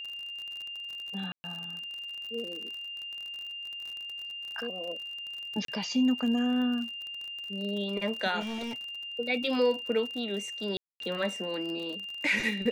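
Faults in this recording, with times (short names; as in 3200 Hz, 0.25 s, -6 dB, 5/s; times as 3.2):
crackle 46/s -36 dBFS
tone 2800 Hz -37 dBFS
1.32–1.44 gap 0.12 s
5.65–5.68 gap 33 ms
8.4–8.82 clipped -32.5 dBFS
10.77–11 gap 0.232 s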